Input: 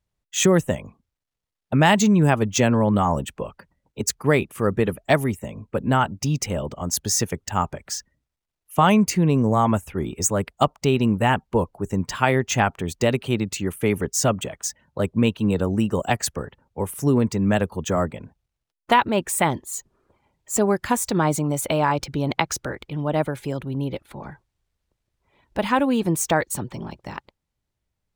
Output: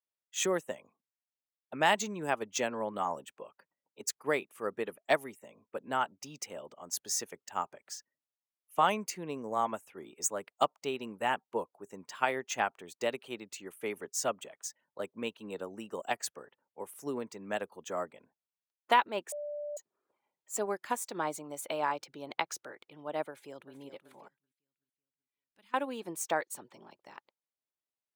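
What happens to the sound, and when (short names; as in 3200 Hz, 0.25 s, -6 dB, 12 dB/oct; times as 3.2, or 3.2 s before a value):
19.32–19.77 bleep 589 Hz -22 dBFS
23.29–23.75 echo throw 0.38 s, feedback 50%, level -10 dB
24.28–25.74 passive tone stack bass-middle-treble 6-0-2
whole clip: HPF 390 Hz 12 dB/oct; upward expander 1.5:1, over -30 dBFS; gain -7 dB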